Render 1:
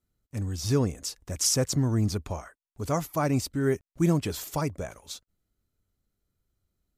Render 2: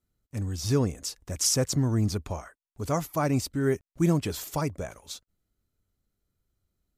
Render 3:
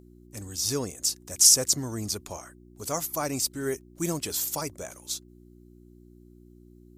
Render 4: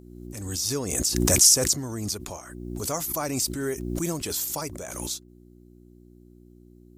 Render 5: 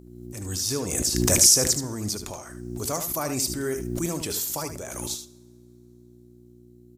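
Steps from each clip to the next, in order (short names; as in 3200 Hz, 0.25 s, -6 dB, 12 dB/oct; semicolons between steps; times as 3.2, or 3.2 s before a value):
nothing audible
buzz 60 Hz, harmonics 6, -43 dBFS -4 dB/oct; tone controls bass -9 dB, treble +13 dB; gain -2.5 dB
backwards sustainer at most 36 dB/s
echo 75 ms -9 dB; on a send at -17 dB: reverb, pre-delay 3 ms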